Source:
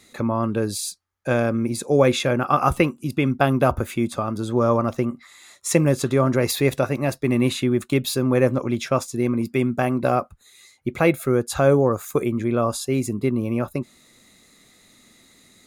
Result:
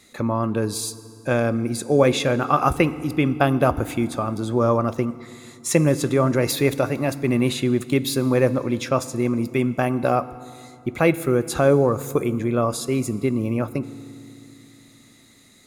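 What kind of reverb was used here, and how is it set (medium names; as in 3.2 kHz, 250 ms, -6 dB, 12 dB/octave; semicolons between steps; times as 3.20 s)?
FDN reverb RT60 2.5 s, low-frequency decay 1.5×, high-frequency decay 0.75×, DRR 15 dB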